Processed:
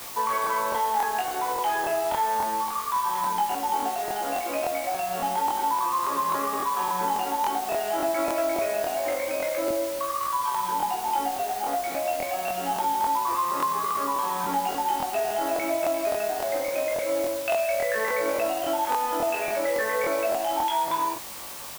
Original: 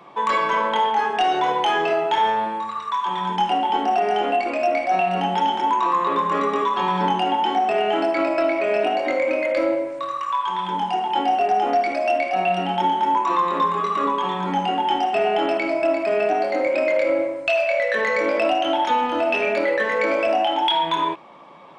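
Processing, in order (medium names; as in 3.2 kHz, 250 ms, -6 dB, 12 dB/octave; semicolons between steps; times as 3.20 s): low-pass 1.2 kHz 12 dB/octave; tilt EQ +4 dB/octave; compression, threshold -25 dBFS, peak gain reduction 7.5 dB; added noise white -40 dBFS; doubling 18 ms -5.5 dB; crackling interface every 0.28 s, samples 1024, repeat, from 0.42 s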